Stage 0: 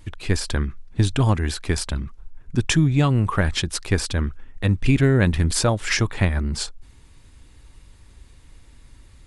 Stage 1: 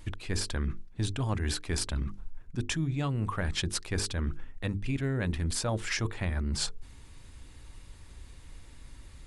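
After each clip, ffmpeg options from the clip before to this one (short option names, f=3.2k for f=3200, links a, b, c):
-af "bandreject=f=50:t=h:w=6,bandreject=f=100:t=h:w=6,bandreject=f=150:t=h:w=6,bandreject=f=200:t=h:w=6,bandreject=f=250:t=h:w=6,bandreject=f=300:t=h:w=6,bandreject=f=350:t=h:w=6,bandreject=f=400:t=h:w=6,bandreject=f=450:t=h:w=6,areverse,acompressor=threshold=-28dB:ratio=6,areverse"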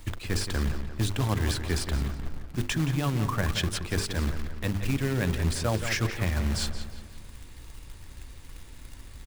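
-filter_complex "[0:a]acrossover=split=180|3700[a][b][c];[c]alimiter=level_in=4dB:limit=-24dB:level=0:latency=1:release=214,volume=-4dB[d];[a][b][d]amix=inputs=3:normalize=0,acrusher=bits=3:mode=log:mix=0:aa=0.000001,asplit=2[e][f];[f]adelay=174,lowpass=f=3.9k:p=1,volume=-9dB,asplit=2[g][h];[h]adelay=174,lowpass=f=3.9k:p=1,volume=0.52,asplit=2[i][j];[j]adelay=174,lowpass=f=3.9k:p=1,volume=0.52,asplit=2[k][l];[l]adelay=174,lowpass=f=3.9k:p=1,volume=0.52,asplit=2[m][n];[n]adelay=174,lowpass=f=3.9k:p=1,volume=0.52,asplit=2[o][p];[p]adelay=174,lowpass=f=3.9k:p=1,volume=0.52[q];[e][g][i][k][m][o][q]amix=inputs=7:normalize=0,volume=3dB"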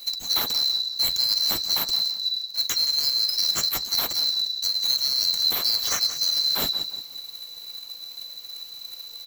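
-af "afftfilt=real='real(if(lt(b,736),b+184*(1-2*mod(floor(b/184),2)),b),0)':imag='imag(if(lt(b,736),b+184*(1-2*mod(floor(b/184),2)),b),0)':win_size=2048:overlap=0.75,aexciter=amount=3:drive=5:freq=10k,flanger=delay=4.5:depth=9:regen=-63:speed=0.45:shape=triangular,volume=7dB"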